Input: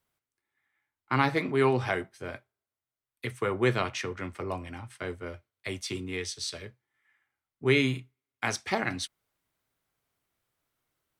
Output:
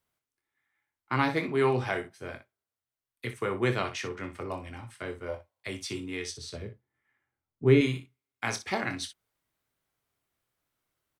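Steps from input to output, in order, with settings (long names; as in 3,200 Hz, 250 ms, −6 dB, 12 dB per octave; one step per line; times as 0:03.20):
0:05.29–0:05.64: gain on a spectral selection 480–1,100 Hz +12 dB
0:06.31–0:07.81: tilt shelving filter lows +7.5 dB, about 890 Hz
ambience of single reflections 25 ms −9.5 dB, 61 ms −11.5 dB
level −2 dB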